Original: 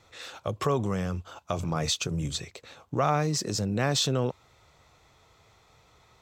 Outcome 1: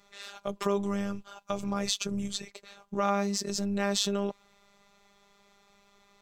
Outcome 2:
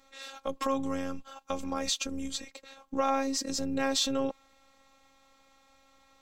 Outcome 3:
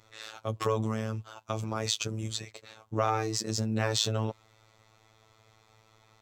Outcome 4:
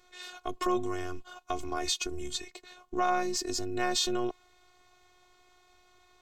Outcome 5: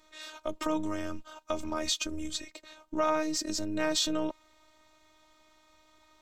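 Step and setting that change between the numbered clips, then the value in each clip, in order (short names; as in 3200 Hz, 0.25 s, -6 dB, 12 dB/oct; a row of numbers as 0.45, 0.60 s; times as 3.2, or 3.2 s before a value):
robotiser, frequency: 200, 270, 110, 360, 310 Hz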